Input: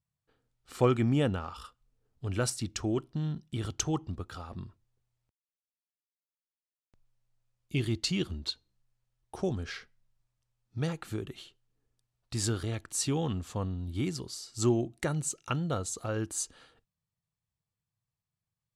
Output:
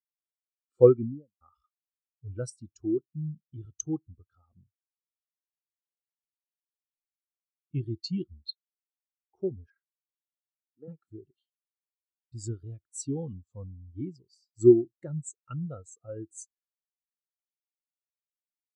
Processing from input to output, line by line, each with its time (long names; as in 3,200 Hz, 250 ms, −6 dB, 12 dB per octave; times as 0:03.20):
0:00.84–0:01.41: fade out and dull
0:09.70–0:10.88: Chebyshev band-pass filter 280–1,400 Hz
whole clip: bass and treble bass −3 dB, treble +5 dB; every bin expanded away from the loudest bin 2.5 to 1; level +5.5 dB